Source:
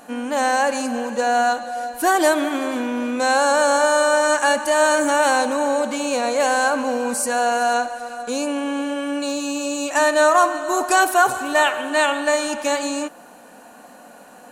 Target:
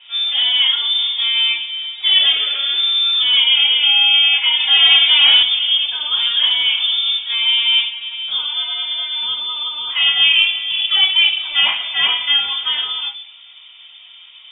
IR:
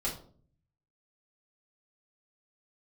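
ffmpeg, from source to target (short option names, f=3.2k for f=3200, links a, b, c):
-filter_complex "[1:a]atrim=start_sample=2205[a];[0:a][a]afir=irnorm=-1:irlink=0,asettb=1/sr,asplit=3[b][c][d];[b]atrim=end=4.604[e];[c]atrim=start=4.6:end=5.43,asetpts=PTS-STARTPTS,afade=t=in:d=0.004:c=qsin,afade=t=out:st=0.826:d=0.004:c=qsin,acontrast=50[f];[d]atrim=start=5.426[g];[e][f]acrossfade=d=0.004:c1=hsin:c2=qsin[h];[h][g]acrossfade=d=0.004:c1=qsin:c2=hsin,lowpass=f=3.2k:t=q:w=0.5098,lowpass=f=3.2k:t=q:w=0.6013,lowpass=f=3.2k:t=q:w=0.9,lowpass=f=3.2k:t=q:w=2.563,afreqshift=-3800,volume=-3dB"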